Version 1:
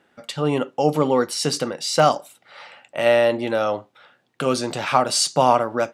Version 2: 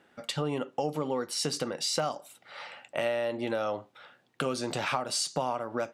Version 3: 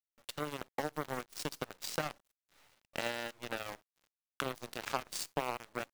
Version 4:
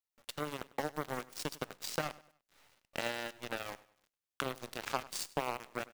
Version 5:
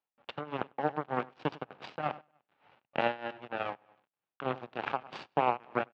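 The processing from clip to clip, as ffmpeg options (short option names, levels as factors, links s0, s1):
-af "acompressor=threshold=0.0501:ratio=6,volume=0.841"
-af "aeval=exprs='0.211*(cos(1*acos(clip(val(0)/0.211,-1,1)))-cos(1*PI/2))+0.00299*(cos(3*acos(clip(val(0)/0.211,-1,1)))-cos(3*PI/2))+0.0335*(cos(7*acos(clip(val(0)/0.211,-1,1)))-cos(7*PI/2))':c=same,acrusher=bits=7:dc=4:mix=0:aa=0.000001,volume=0.668"
-af "aecho=1:1:99|198|297:0.1|0.038|0.0144"
-af "tremolo=f=3.3:d=0.85,highpass=130,equalizer=f=130:t=q:w=4:g=3,equalizer=f=800:t=q:w=4:g=6,equalizer=f=2000:t=q:w=4:g=-6,lowpass=f=2700:w=0.5412,lowpass=f=2700:w=1.3066,volume=2.82"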